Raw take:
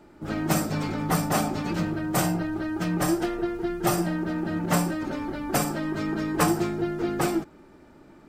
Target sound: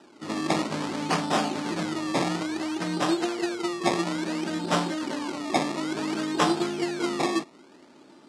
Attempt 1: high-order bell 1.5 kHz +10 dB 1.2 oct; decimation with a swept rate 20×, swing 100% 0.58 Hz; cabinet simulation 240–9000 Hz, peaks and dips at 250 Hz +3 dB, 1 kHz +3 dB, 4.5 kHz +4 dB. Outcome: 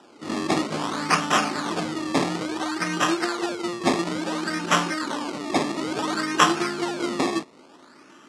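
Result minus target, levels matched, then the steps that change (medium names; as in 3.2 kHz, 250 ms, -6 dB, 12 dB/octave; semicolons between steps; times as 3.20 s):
2 kHz band +3.0 dB
remove: high-order bell 1.5 kHz +10 dB 1.2 oct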